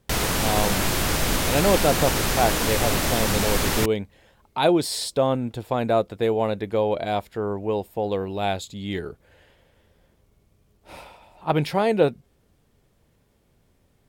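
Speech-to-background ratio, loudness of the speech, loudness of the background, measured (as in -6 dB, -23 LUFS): -2.0 dB, -25.0 LUFS, -23.0 LUFS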